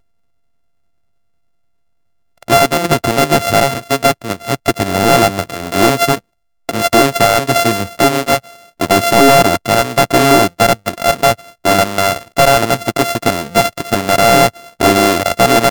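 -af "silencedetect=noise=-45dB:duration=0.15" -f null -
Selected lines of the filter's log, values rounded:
silence_start: 0.00
silence_end: 2.38 | silence_duration: 2.38
silence_start: 6.20
silence_end: 6.69 | silence_duration: 0.48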